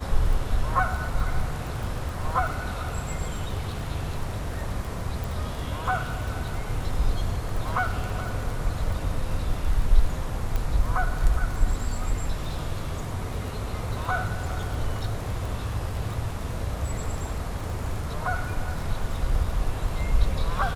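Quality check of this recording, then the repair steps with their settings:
crackle 24/s -31 dBFS
5.24 pop
10.56 pop -15 dBFS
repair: de-click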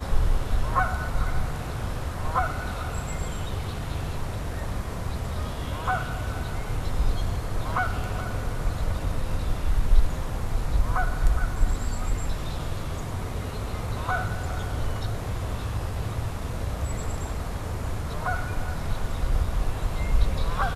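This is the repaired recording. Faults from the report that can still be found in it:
none

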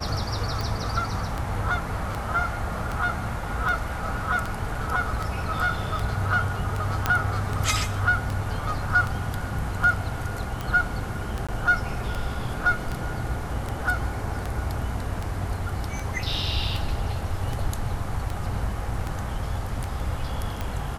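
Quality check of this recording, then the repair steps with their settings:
tick 78 rpm
7.06 pop -7 dBFS
11.47–11.49 gap 16 ms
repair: de-click; interpolate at 11.47, 16 ms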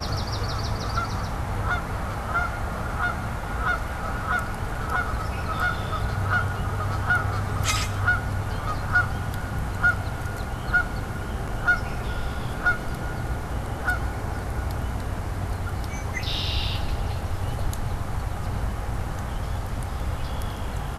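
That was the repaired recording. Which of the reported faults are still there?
none

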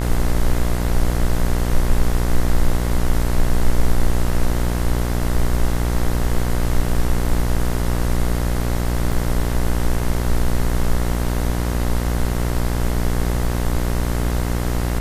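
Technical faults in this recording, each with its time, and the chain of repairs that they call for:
buzz 60 Hz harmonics 36 -21 dBFS
9.12 gap 3.8 ms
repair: de-hum 60 Hz, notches 36; interpolate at 9.12, 3.8 ms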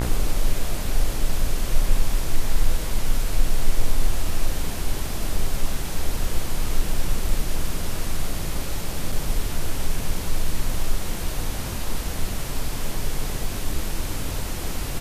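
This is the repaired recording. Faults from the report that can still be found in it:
none

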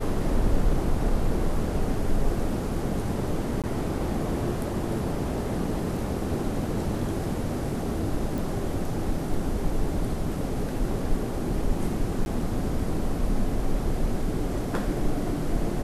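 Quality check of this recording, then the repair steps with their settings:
3.62–3.64 gap 17 ms
8.38 pop
12.25–12.26 gap 11 ms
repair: de-click; interpolate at 3.62, 17 ms; interpolate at 12.25, 11 ms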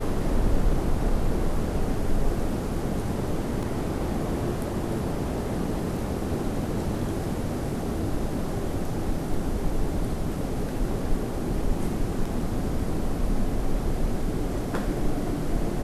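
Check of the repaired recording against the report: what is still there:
none

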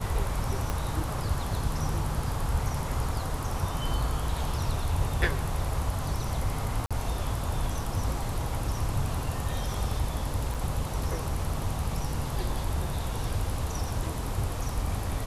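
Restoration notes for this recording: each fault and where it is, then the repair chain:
0.7 pop -16 dBFS
6.86–6.91 gap 46 ms
10.54–10.55 gap 5.8 ms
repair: de-click; interpolate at 6.86, 46 ms; interpolate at 10.54, 5.8 ms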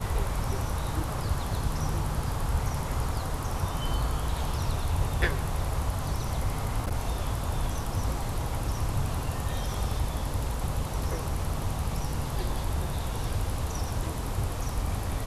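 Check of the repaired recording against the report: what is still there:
0.7 pop

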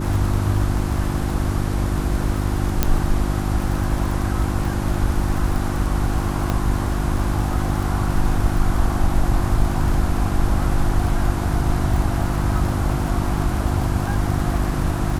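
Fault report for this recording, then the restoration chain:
crackle 31/s -25 dBFS
hum 50 Hz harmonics 7 -24 dBFS
2.83 pop -2 dBFS
6.5 pop -9 dBFS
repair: de-click; de-hum 50 Hz, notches 7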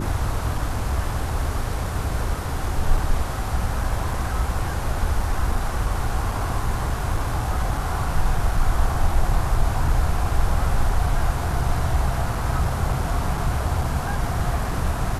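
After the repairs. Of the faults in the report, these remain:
none

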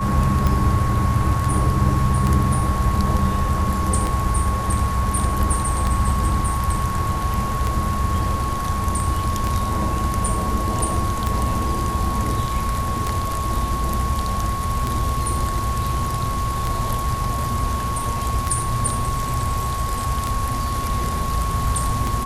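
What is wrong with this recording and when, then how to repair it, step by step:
tick 33 1/3 rpm -8 dBFS
tone 1100 Hz -25 dBFS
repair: de-click; notch 1100 Hz, Q 30

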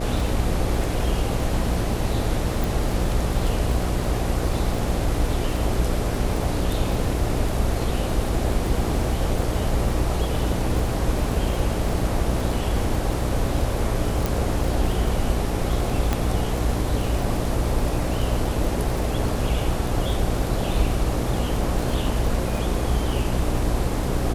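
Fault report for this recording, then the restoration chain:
buzz 60 Hz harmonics 12 -27 dBFS
crackle 39/s -27 dBFS
2.64 pop
14.26 pop
16.13 pop -8 dBFS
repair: de-click; de-hum 60 Hz, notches 12

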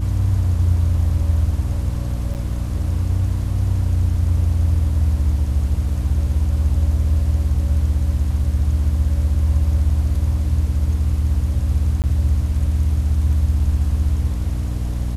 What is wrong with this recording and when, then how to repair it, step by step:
hum 60 Hz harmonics 5 -23 dBFS
2.34–2.35 gap 8.5 ms
12.02–12.04 gap 18 ms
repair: de-hum 60 Hz, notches 5; interpolate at 2.34, 8.5 ms; interpolate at 12.02, 18 ms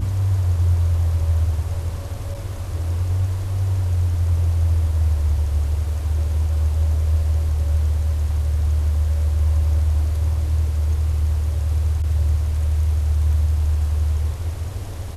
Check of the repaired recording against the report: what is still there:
none

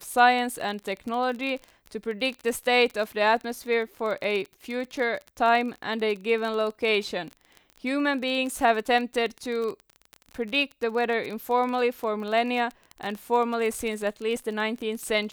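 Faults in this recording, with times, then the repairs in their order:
crackle 31/s -30 dBFS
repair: de-click

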